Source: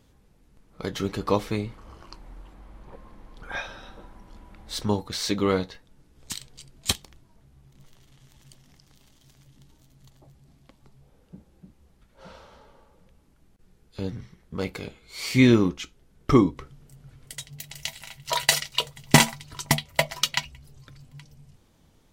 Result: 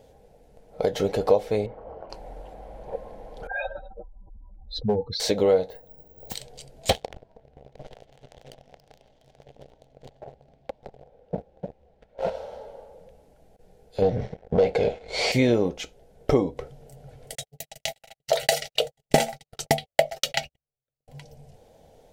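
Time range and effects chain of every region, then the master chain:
1.66–2.10 s: low-pass 1.4 kHz + bass shelf 180 Hz -6 dB
3.47–5.20 s: spectral contrast enhancement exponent 2.8 + level-controlled noise filter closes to 2.2 kHz, open at -23 dBFS + overload inside the chain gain 20.5 dB
5.70–6.35 s: treble shelf 2 kHz -11.5 dB + careless resampling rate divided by 2×, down none, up zero stuff
6.89–12.30 s: low-pass 3.6 kHz + waveshaping leveller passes 3
14.02–15.32 s: waveshaping leveller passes 3 + distance through air 100 m + tape noise reduction on one side only decoder only
17.35–21.08 s: Butterworth band-stop 1 kHz, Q 4.1 + gate -41 dBFS, range -49 dB
whole clip: high-order bell 590 Hz +15.5 dB 1.1 oct; band-stop 1.2 kHz, Q 6.3; compression 2.5:1, threshold -22 dBFS; trim +1.5 dB

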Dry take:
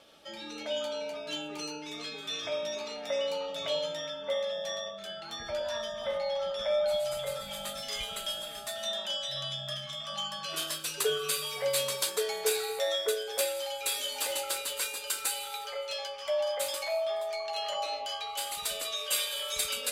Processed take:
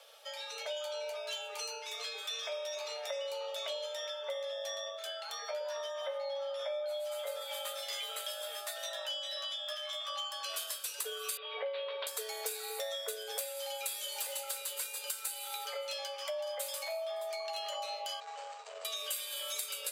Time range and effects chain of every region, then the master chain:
5.32–10.31 s: peaking EQ 10 kHz -6.5 dB 2.1 oct + doubling 13 ms -3 dB
11.37–12.07 s: steep low-pass 3.6 kHz 48 dB/octave + bass shelf 450 Hz +11.5 dB
18.20–18.85 s: median filter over 25 samples + elliptic low-pass 7.8 kHz + transformer saturation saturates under 600 Hz
whole clip: steep high-pass 440 Hz 96 dB/octave; treble shelf 9.4 kHz +11 dB; compression, threshold -36 dBFS

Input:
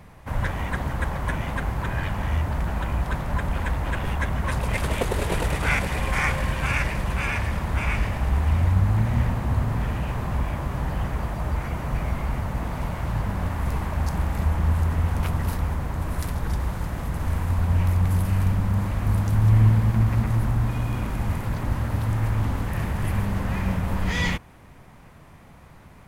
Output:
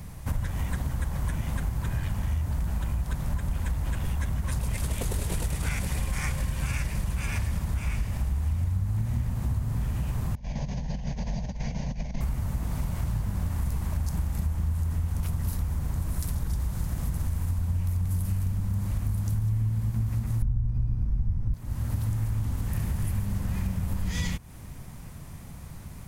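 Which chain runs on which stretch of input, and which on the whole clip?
10.35–12.21 s: compressor with a negative ratio -28 dBFS, ratio -0.5 + rippled Chebyshev low-pass 6.6 kHz, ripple 3 dB + static phaser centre 340 Hz, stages 6
20.42–21.54 s: RIAA curve playback + decimation joined by straight lines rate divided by 6×
whole clip: tone controls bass +11 dB, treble +15 dB; compression, threshold -23 dBFS; trim -2.5 dB

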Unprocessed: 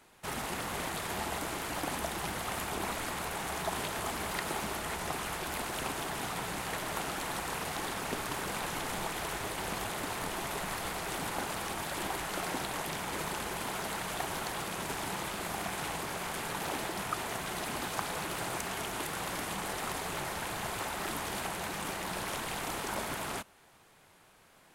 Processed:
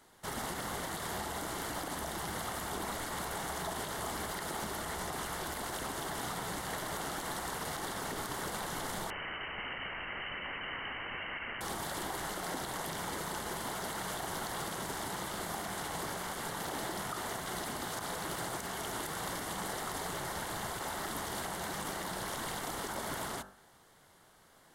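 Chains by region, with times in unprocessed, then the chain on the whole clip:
9.10–11.61 s: one-bit delta coder 64 kbps, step -32.5 dBFS + frequency inversion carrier 3 kHz
whole clip: de-hum 48.73 Hz, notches 36; peak limiter -27.5 dBFS; peaking EQ 2.5 kHz -14 dB 0.22 oct

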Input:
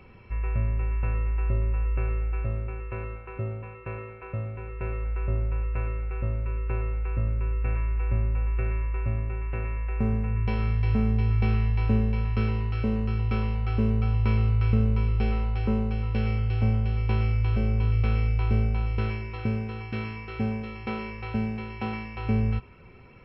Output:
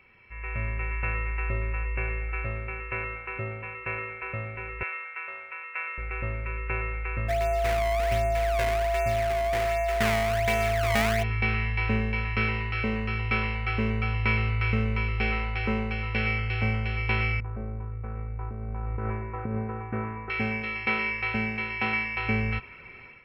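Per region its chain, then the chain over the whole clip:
1.83–2.29 s: treble shelf 4.5 kHz -6 dB + band-stop 1.3 kHz, Q 15
4.83–5.98 s: high-pass 970 Hz + band-stop 4.2 kHz, Q 23
7.28–11.22 s: decimation with a swept rate 24×, swing 160% 1.3 Hz + whistle 680 Hz -26 dBFS
17.40–20.30 s: low-pass 1.2 kHz 24 dB/octave + compressor with a negative ratio -28 dBFS
whole clip: bass shelf 410 Hz -8.5 dB; level rider gain up to 12 dB; peaking EQ 2.1 kHz +12.5 dB 0.86 oct; trim -8.5 dB

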